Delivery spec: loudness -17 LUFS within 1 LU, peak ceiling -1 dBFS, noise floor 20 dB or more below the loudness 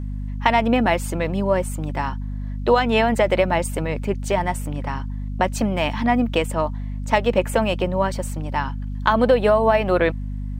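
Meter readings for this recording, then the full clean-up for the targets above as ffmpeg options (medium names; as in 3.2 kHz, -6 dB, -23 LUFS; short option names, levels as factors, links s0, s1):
hum 50 Hz; highest harmonic 250 Hz; hum level -25 dBFS; loudness -21.5 LUFS; peak level -2.0 dBFS; loudness target -17.0 LUFS
-> -af "bandreject=f=50:t=h:w=6,bandreject=f=100:t=h:w=6,bandreject=f=150:t=h:w=6,bandreject=f=200:t=h:w=6,bandreject=f=250:t=h:w=6"
-af "volume=1.68,alimiter=limit=0.891:level=0:latency=1"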